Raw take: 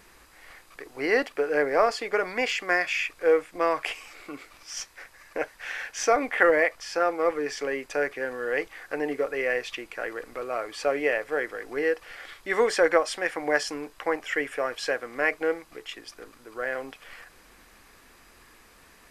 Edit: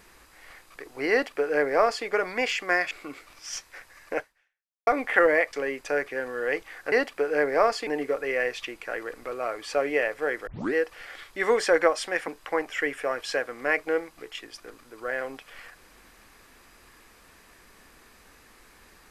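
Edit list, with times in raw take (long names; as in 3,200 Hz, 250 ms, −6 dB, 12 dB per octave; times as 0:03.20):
0:01.11–0:02.06: duplicate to 0:08.97
0:02.91–0:04.15: remove
0:05.43–0:06.11: fade out exponential
0:06.77–0:07.58: remove
0:11.57: tape start 0.27 s
0:13.38–0:13.82: remove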